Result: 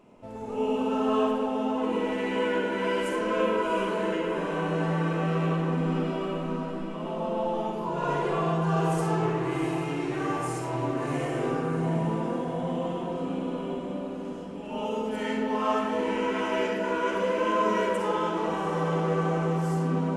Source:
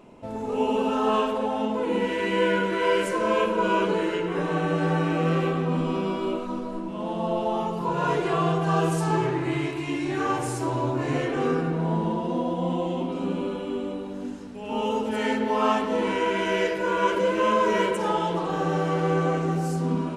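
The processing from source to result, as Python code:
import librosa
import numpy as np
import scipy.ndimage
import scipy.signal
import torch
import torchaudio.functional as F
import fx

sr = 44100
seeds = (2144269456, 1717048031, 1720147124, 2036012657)

y = fx.peak_eq(x, sr, hz=3900.0, db=-3.0, octaves=0.31)
y = fx.echo_diffused(y, sr, ms=731, feedback_pct=49, wet_db=-7.5)
y = fx.rev_freeverb(y, sr, rt60_s=1.2, hf_ratio=0.4, predelay_ms=20, drr_db=1.5)
y = y * librosa.db_to_amplitude(-6.5)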